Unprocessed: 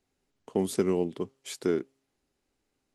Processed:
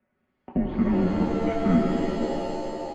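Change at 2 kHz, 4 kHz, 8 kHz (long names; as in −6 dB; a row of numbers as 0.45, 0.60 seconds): +7.5 dB, +1.5 dB, can't be measured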